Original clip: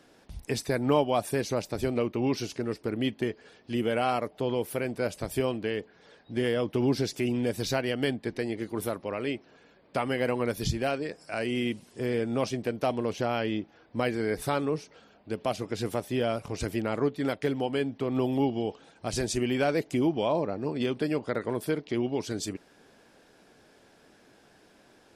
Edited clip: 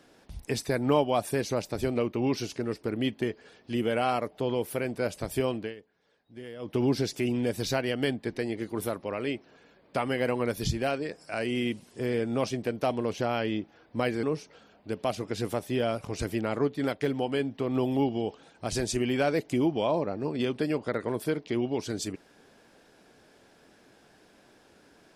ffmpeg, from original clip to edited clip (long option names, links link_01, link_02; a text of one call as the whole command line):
ffmpeg -i in.wav -filter_complex "[0:a]asplit=4[link_01][link_02][link_03][link_04];[link_01]atrim=end=5.75,asetpts=PTS-STARTPTS,afade=type=out:start_time=5.59:duration=0.16:silence=0.177828[link_05];[link_02]atrim=start=5.75:end=6.59,asetpts=PTS-STARTPTS,volume=-15dB[link_06];[link_03]atrim=start=6.59:end=14.232,asetpts=PTS-STARTPTS,afade=type=in:duration=0.16:silence=0.177828[link_07];[link_04]atrim=start=14.638[link_08];[link_05][link_06][link_07]concat=n=3:v=0:a=1[link_09];[link_09][link_08]acrossfade=duration=0.004:curve1=hsin:curve2=hsin" out.wav